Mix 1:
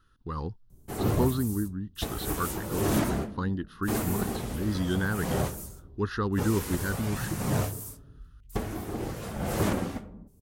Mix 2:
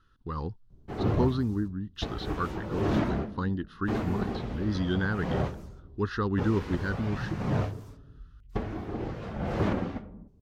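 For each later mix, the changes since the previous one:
speech: add low-pass filter 5,900 Hz 12 dB per octave
background: add high-frequency loss of the air 230 metres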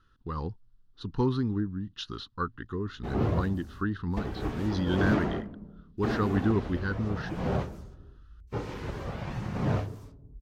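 background: entry +2.15 s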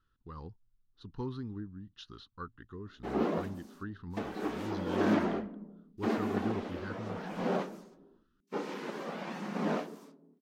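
speech −11.5 dB
background: add linear-phase brick-wall high-pass 170 Hz

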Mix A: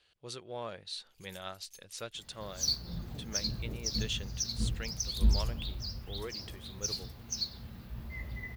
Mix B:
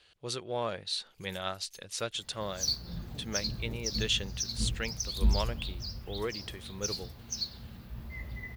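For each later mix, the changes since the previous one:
speech +7.0 dB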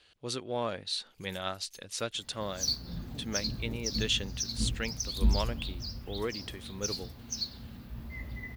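master: add parametric band 260 Hz +8.5 dB 0.31 octaves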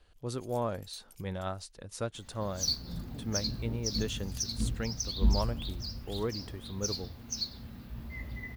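speech: remove meter weighting curve D
first sound: entry −0.80 s

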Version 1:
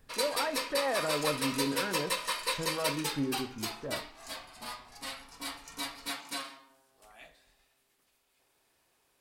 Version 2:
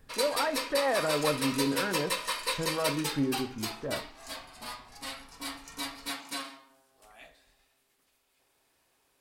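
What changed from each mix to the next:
speech +3.5 dB
background: send on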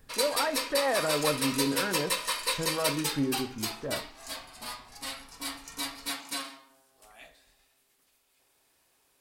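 master: add high-shelf EQ 4,300 Hz +5 dB

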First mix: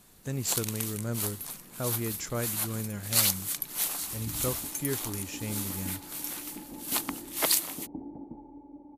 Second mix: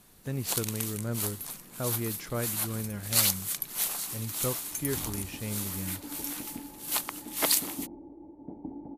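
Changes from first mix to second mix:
speech: remove low-pass with resonance 7,300 Hz, resonance Q 5.4
second sound: entry +0.70 s

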